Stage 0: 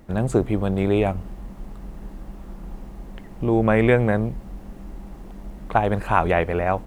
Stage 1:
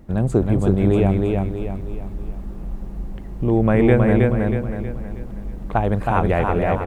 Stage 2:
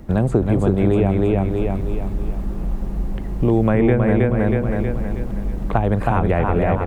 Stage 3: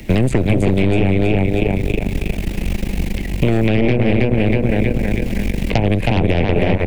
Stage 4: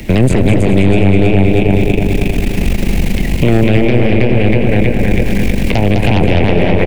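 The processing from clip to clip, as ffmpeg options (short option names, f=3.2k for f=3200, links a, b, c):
-filter_complex "[0:a]lowshelf=f=430:g=8.5,asplit=2[a][b];[b]aecho=0:1:319|638|957|1276|1595|1914:0.708|0.304|0.131|0.0563|0.0242|0.0104[c];[a][c]amix=inputs=2:normalize=0,volume=-4dB"
-filter_complex "[0:a]acrossover=split=300|2800[a][b][c];[a]acompressor=threshold=-24dB:ratio=4[d];[b]acompressor=threshold=-26dB:ratio=4[e];[c]acompressor=threshold=-55dB:ratio=4[f];[d][e][f]amix=inputs=3:normalize=0,volume=7dB"
-filter_complex "[0:a]aeval=exprs='0.891*(cos(1*acos(clip(val(0)/0.891,-1,1)))-cos(1*PI/2))+0.141*(cos(8*acos(clip(val(0)/0.891,-1,1)))-cos(8*PI/2))':c=same,highshelf=f=1.7k:t=q:w=3:g=11,acrossover=split=87|800[a][b][c];[a]acompressor=threshold=-22dB:ratio=4[d];[b]acompressor=threshold=-17dB:ratio=4[e];[c]acompressor=threshold=-32dB:ratio=4[f];[d][e][f]amix=inputs=3:normalize=0,volume=4.5dB"
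-af "aecho=1:1:206|412|618|824|1030|1236:0.447|0.21|0.0987|0.0464|0.0218|0.0102,alimiter=level_in=8dB:limit=-1dB:release=50:level=0:latency=1,volume=-1dB"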